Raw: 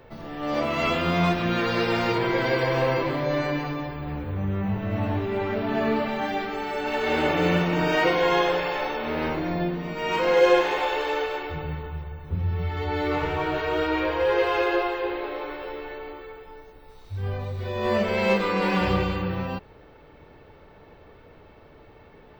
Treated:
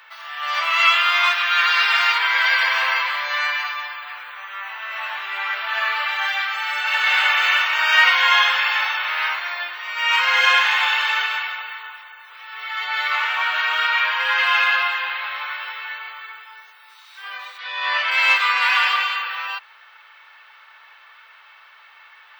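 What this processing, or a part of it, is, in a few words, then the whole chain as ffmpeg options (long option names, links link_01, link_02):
headphones lying on a table: -filter_complex "[0:a]asplit=3[link_01][link_02][link_03];[link_01]afade=type=out:start_time=17.57:duration=0.02[link_04];[link_02]lowpass=frequency=5300:width=0.5412,lowpass=frequency=5300:width=1.3066,afade=type=in:start_time=17.57:duration=0.02,afade=type=out:start_time=18.1:duration=0.02[link_05];[link_03]afade=type=in:start_time=18.1:duration=0.02[link_06];[link_04][link_05][link_06]amix=inputs=3:normalize=0,highpass=frequency=1200:width=0.5412,highpass=frequency=1200:width=1.3066,equalizer=frequency=1300:width_type=o:width=2.4:gain=5,equalizer=frequency=3100:width_type=o:width=0.57:gain=4,volume=8dB"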